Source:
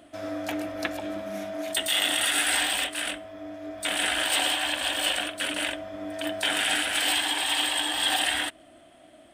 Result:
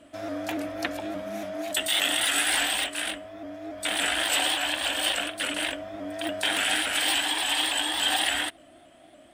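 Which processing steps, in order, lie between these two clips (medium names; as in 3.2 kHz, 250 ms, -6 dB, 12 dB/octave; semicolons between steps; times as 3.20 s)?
vibrato with a chosen wave saw up 3.5 Hz, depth 100 cents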